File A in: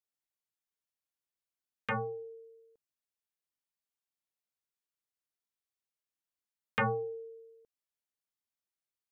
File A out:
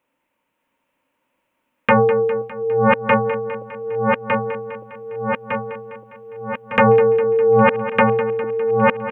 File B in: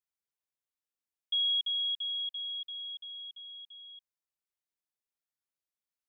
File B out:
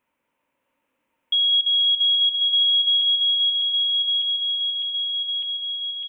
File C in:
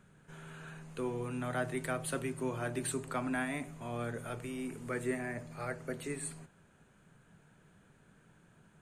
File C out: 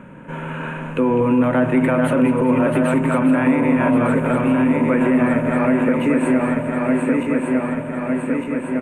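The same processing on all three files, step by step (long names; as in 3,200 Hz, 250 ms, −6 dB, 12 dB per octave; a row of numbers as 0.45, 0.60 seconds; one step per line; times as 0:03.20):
feedback delay that plays each chunk backwards 603 ms, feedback 73%, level −4.5 dB
high shelf with overshoot 3,400 Hz −9.5 dB, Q 3
in parallel at −1 dB: downward compressor, threshold −44 dBFS
on the sum: hollow resonant body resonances 270/530/920 Hz, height 16 dB, ringing for 30 ms
brickwall limiter −18 dBFS
on a send: repeating echo 203 ms, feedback 60%, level −12.5 dB
on the sum: loudness normalisation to −18 LKFS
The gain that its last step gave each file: +13.0, +10.5, +9.0 decibels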